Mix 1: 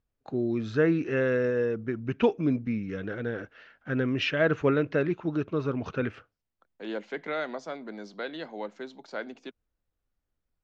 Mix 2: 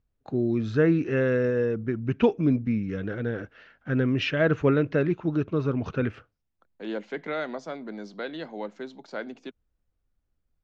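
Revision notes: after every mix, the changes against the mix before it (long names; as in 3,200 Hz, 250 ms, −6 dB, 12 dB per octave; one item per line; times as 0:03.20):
master: add low-shelf EQ 250 Hz +7 dB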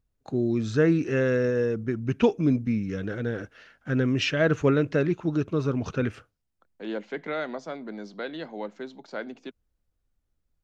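first voice: remove low-pass filter 3,400 Hz 12 dB per octave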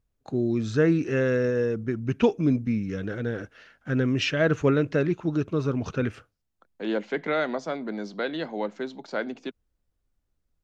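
second voice +5.0 dB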